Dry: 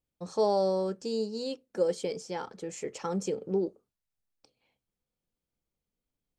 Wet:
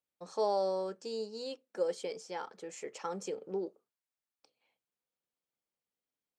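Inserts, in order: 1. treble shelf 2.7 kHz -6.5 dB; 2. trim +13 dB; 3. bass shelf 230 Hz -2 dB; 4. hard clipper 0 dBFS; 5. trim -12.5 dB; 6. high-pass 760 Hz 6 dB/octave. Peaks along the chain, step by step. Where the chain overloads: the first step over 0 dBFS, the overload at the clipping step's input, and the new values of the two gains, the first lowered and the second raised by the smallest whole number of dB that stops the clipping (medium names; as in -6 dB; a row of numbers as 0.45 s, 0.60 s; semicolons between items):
-16.0 dBFS, -3.0 dBFS, -3.5 dBFS, -3.5 dBFS, -16.0 dBFS, -21.0 dBFS; nothing clips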